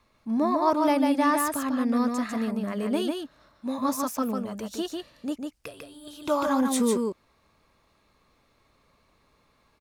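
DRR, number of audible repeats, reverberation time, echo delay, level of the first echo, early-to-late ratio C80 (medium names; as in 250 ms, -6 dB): no reverb, 1, no reverb, 148 ms, -4.0 dB, no reverb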